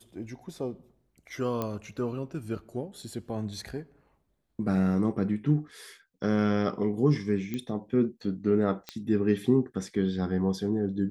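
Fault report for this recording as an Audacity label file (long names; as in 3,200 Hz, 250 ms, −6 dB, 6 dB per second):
1.620000	1.620000	click −17 dBFS
7.540000	7.540000	click −20 dBFS
8.890000	8.890000	click −19 dBFS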